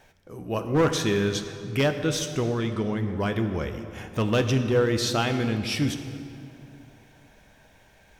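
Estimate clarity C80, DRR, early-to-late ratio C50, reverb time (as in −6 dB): 9.5 dB, 7.0 dB, 8.5 dB, 2.7 s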